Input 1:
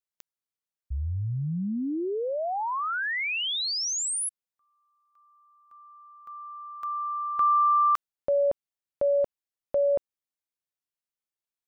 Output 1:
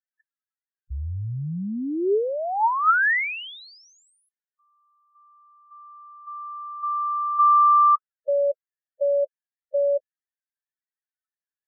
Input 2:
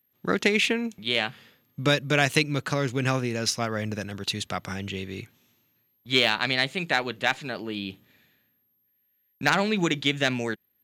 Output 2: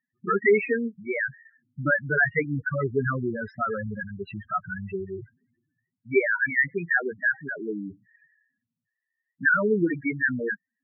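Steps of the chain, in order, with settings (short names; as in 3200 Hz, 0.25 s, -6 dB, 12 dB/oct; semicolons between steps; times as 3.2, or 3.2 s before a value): synth low-pass 1800 Hz, resonance Q 2.9; loudest bins only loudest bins 4; small resonant body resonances 410/900/1300 Hz, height 10 dB, ringing for 35 ms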